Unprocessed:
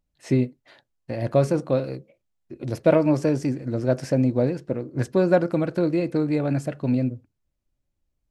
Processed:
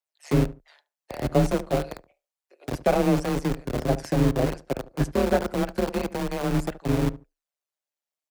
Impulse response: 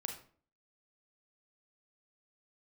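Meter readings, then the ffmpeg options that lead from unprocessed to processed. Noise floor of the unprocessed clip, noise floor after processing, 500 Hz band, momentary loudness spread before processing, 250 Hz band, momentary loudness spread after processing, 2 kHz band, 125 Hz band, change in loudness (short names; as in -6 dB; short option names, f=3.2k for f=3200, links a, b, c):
-78 dBFS, under -85 dBFS, -3.0 dB, 10 LU, -3.0 dB, 10 LU, +1.0 dB, -1.5 dB, -2.5 dB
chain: -filter_complex "[0:a]adynamicequalizer=threshold=0.0141:dfrequency=130:dqfactor=1.8:tfrequency=130:tqfactor=1.8:attack=5:release=100:ratio=0.375:range=3.5:mode=boostabove:tftype=bell,tremolo=f=150:d=0.824,acrossover=split=530|3500[a][b][c];[a]aeval=exprs='val(0)*gte(abs(val(0)),0.0708)':c=same[d];[c]aphaser=in_gain=1:out_gain=1:delay=2.6:decay=0.66:speed=0.29:type=triangular[e];[d][b][e]amix=inputs=3:normalize=0,afreqshift=21,asplit=2[f][g];[g]adelay=72,lowpass=f=1.1k:p=1,volume=-15.5dB,asplit=2[h][i];[i]adelay=72,lowpass=f=1.1k:p=1,volume=0.23[j];[h][j]amix=inputs=2:normalize=0[k];[f][k]amix=inputs=2:normalize=0"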